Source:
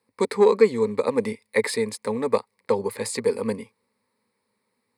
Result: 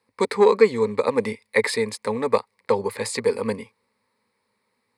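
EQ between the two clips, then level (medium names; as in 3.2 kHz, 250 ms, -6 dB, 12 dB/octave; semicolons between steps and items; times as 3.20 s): peaking EQ 250 Hz -5.5 dB 2.5 oct; treble shelf 8.1 kHz -9.5 dB; +5.0 dB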